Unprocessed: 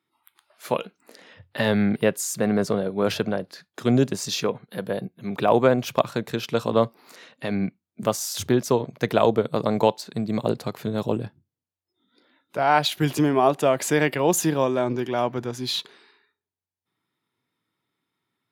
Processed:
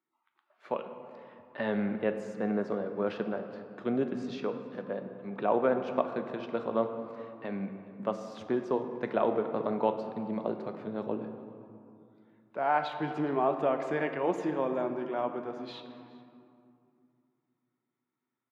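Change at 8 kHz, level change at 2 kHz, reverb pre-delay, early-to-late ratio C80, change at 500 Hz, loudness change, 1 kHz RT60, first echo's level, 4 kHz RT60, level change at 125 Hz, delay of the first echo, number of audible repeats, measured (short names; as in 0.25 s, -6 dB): under -30 dB, -10.0 dB, 3 ms, 9.0 dB, -8.0 dB, -9.0 dB, 2.6 s, -23.0 dB, 1.3 s, -15.0 dB, 0.413 s, 1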